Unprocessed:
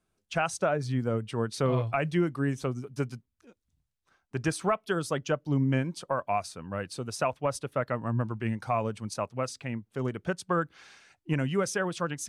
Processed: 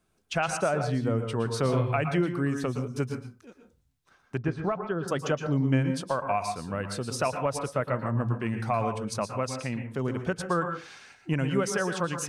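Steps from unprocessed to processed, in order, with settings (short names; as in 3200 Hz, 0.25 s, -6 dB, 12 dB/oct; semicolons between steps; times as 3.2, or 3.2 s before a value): in parallel at +2 dB: compressor, threshold -39 dBFS, peak gain reduction 16.5 dB; 4.37–5.08 on the sum: tape spacing loss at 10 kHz 39 dB; reverb RT60 0.30 s, pre-delay 0.108 s, DRR 6 dB; gain -1.5 dB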